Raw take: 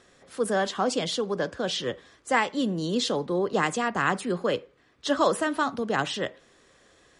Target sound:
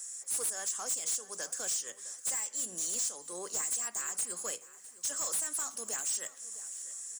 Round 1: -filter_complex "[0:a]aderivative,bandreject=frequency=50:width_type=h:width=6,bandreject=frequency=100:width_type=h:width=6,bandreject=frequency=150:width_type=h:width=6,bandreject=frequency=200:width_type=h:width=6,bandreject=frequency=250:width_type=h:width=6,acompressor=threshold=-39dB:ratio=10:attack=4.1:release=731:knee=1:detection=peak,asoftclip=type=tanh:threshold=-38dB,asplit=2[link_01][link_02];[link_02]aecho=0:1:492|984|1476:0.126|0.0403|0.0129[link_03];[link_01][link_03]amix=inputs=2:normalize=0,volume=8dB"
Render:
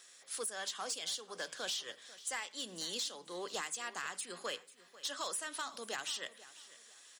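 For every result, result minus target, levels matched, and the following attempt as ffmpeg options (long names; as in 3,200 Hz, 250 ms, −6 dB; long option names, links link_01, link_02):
4,000 Hz band +11.5 dB; echo 167 ms early
-filter_complex "[0:a]aderivative,bandreject=frequency=50:width_type=h:width=6,bandreject=frequency=100:width_type=h:width=6,bandreject=frequency=150:width_type=h:width=6,bandreject=frequency=200:width_type=h:width=6,bandreject=frequency=250:width_type=h:width=6,acompressor=threshold=-39dB:ratio=10:attack=4.1:release=731:knee=1:detection=peak,highshelf=frequency=5300:width_type=q:width=3:gain=13.5,asoftclip=type=tanh:threshold=-38dB,asplit=2[link_01][link_02];[link_02]aecho=0:1:492|984|1476:0.126|0.0403|0.0129[link_03];[link_01][link_03]amix=inputs=2:normalize=0,volume=8dB"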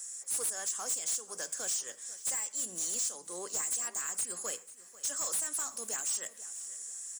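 echo 167 ms early
-filter_complex "[0:a]aderivative,bandreject=frequency=50:width_type=h:width=6,bandreject=frequency=100:width_type=h:width=6,bandreject=frequency=150:width_type=h:width=6,bandreject=frequency=200:width_type=h:width=6,bandreject=frequency=250:width_type=h:width=6,acompressor=threshold=-39dB:ratio=10:attack=4.1:release=731:knee=1:detection=peak,highshelf=frequency=5300:width_type=q:width=3:gain=13.5,asoftclip=type=tanh:threshold=-38dB,asplit=2[link_01][link_02];[link_02]aecho=0:1:659|1318|1977:0.126|0.0403|0.0129[link_03];[link_01][link_03]amix=inputs=2:normalize=0,volume=8dB"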